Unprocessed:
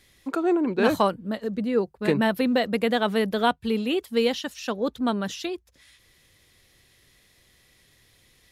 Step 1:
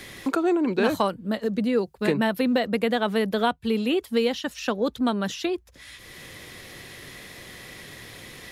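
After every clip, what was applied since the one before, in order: three bands compressed up and down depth 70%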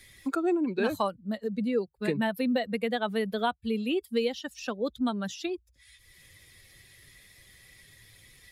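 expander on every frequency bin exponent 1.5; trim -3 dB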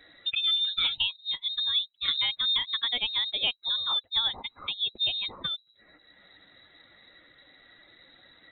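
frequency inversion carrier 3.9 kHz

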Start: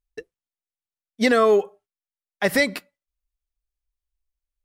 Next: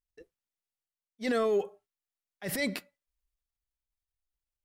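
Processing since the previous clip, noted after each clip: dynamic bell 1.1 kHz, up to -6 dB, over -34 dBFS, Q 1.3; transient shaper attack -11 dB, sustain +7 dB; trim -8.5 dB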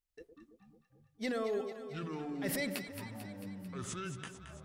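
compression, threshold -33 dBFS, peak gain reduction 9 dB; ever faster or slower copies 104 ms, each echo -7 st, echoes 3, each echo -6 dB; on a send: echo whose repeats swap between lows and highs 111 ms, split 970 Hz, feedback 79%, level -8 dB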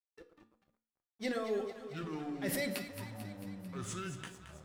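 crossover distortion -58 dBFS; on a send at -7 dB: reverberation RT60 0.40 s, pre-delay 4 ms

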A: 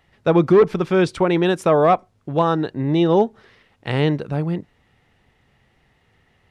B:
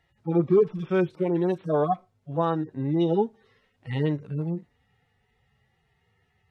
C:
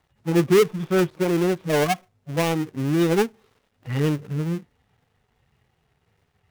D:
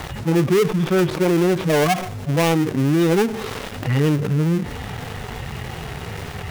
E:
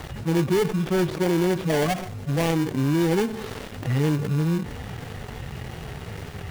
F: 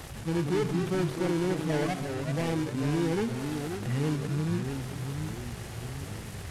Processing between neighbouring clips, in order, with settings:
harmonic-percussive separation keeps harmonic; trim -6 dB
dead-time distortion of 0.29 ms; trim +3.5 dB
level flattener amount 70%; trim -1.5 dB
in parallel at -5 dB: sample-and-hold 34×; on the sum: endings held to a fixed fall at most 200 dB/s; trim -7.5 dB
one-bit delta coder 64 kbps, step -34 dBFS; ever faster or slower copies 145 ms, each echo -2 st, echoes 3, each echo -6 dB; trim -7 dB

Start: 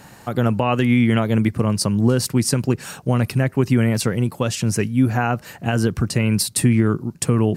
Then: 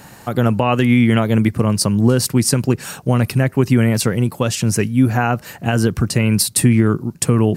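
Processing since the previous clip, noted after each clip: treble shelf 12 kHz +6 dB; trim +3 dB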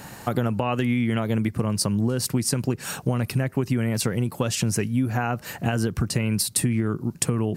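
compression 6:1, threshold -20 dBFS, peak gain reduction 11.5 dB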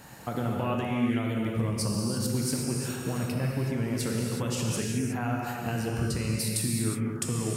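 gated-style reverb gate 390 ms flat, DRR -2 dB; trim -9 dB

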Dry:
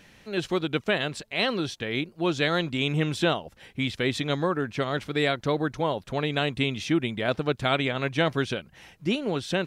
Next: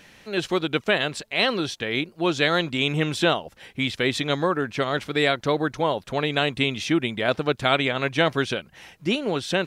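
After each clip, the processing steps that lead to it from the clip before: bass shelf 250 Hz -6 dB; trim +4.5 dB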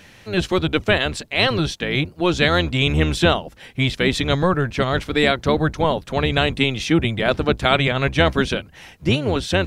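octave divider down 1 oct, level +1 dB; trim +3.5 dB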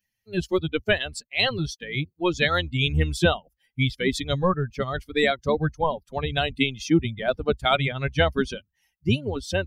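expander on every frequency bin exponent 2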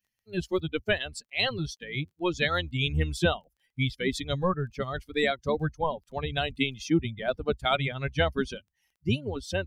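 crackle 19 per s -52 dBFS; trim -4.5 dB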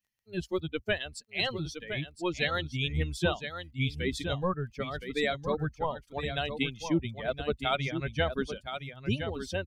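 delay 1016 ms -8.5 dB; trim -3.5 dB

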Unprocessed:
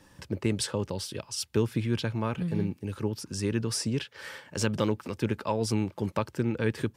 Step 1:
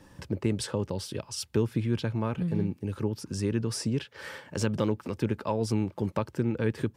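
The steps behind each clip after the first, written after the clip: tilt shelf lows +3 dB, about 1.2 kHz; in parallel at 0 dB: compression, threshold -33 dBFS, peak gain reduction 14.5 dB; on the sum: trim -4.5 dB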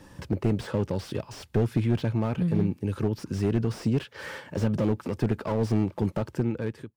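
fade out at the end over 0.70 s; slew-rate limiter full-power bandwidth 21 Hz; trim +4 dB

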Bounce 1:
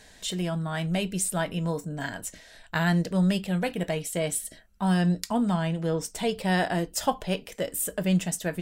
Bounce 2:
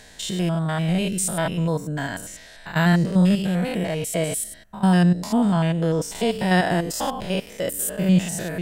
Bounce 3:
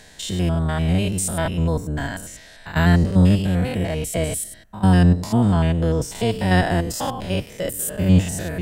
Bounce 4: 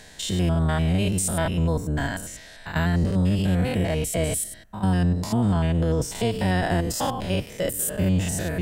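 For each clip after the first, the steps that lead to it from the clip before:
spectrogram pixelated in time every 100 ms; trim +7 dB
octave divider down 1 oct, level 0 dB
peak limiter -14.5 dBFS, peak gain reduction 9.5 dB

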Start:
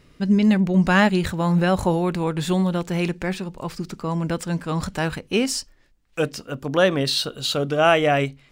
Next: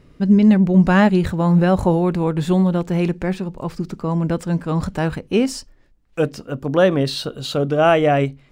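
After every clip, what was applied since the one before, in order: tilt shelf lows +5 dB, about 1.3 kHz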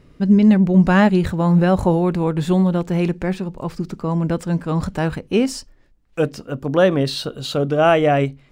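no audible change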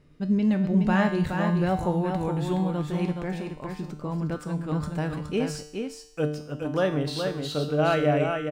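feedback comb 150 Hz, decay 0.7 s, harmonics all, mix 80%; delay 420 ms -5.5 dB; trim +2.5 dB

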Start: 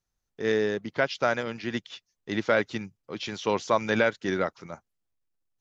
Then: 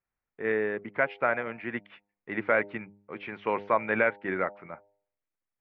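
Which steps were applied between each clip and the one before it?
Chebyshev low-pass 2.3 kHz, order 4; tilt EQ +2 dB/octave; de-hum 101.2 Hz, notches 9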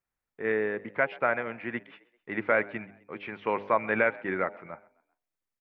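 frequency-shifting echo 130 ms, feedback 44%, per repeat +41 Hz, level -22.5 dB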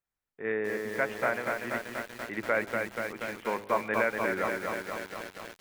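bit-crushed delay 240 ms, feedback 80%, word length 7-bit, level -3.5 dB; trim -3.5 dB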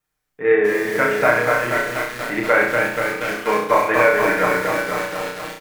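comb 6.6 ms, depth 71%; vibrato 2.6 Hz 33 cents; on a send: flutter echo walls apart 5.7 m, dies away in 0.59 s; on the sum: trim +9 dB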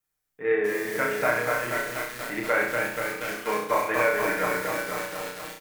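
treble shelf 5.8 kHz +9 dB; trim -8.5 dB

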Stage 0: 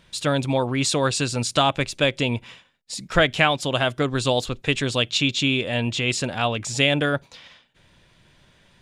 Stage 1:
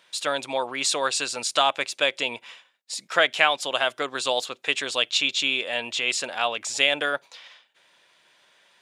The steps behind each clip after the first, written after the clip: high-pass 600 Hz 12 dB/octave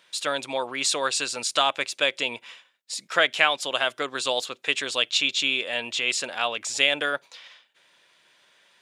peaking EQ 770 Hz -3 dB 0.81 oct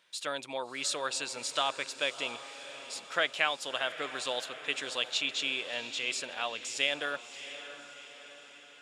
echo that smears into a reverb 668 ms, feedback 54%, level -12.5 dB; trim -8.5 dB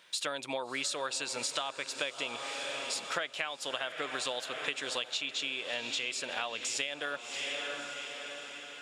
compression 12:1, threshold -39 dBFS, peak gain reduction 17.5 dB; trim +8 dB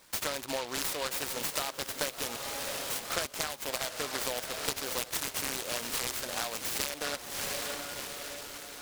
delay time shaken by noise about 2.8 kHz, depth 0.13 ms; trim +1.5 dB

